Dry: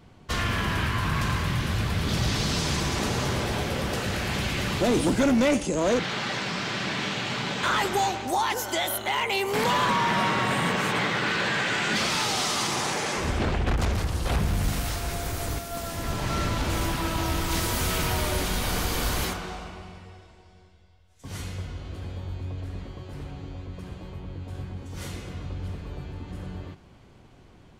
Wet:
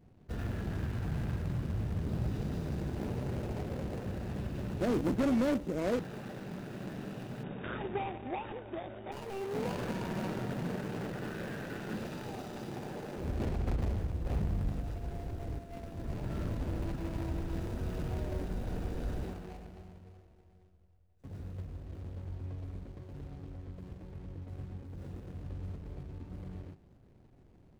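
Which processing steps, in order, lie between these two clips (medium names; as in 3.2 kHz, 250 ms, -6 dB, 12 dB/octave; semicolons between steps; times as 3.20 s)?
median filter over 41 samples; 7.43–9.12 s: brick-wall FIR low-pass 3.8 kHz; trim -7 dB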